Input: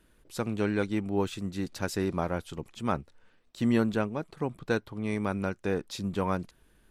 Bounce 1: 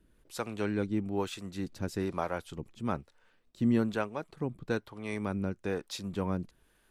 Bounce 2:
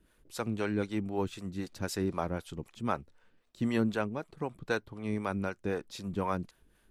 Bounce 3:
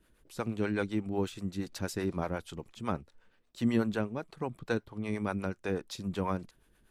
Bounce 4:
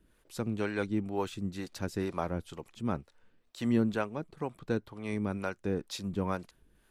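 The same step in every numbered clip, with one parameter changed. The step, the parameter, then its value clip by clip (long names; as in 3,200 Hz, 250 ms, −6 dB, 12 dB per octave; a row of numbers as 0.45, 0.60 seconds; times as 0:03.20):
two-band tremolo in antiphase, speed: 1.1, 3.9, 8.2, 2.1 Hertz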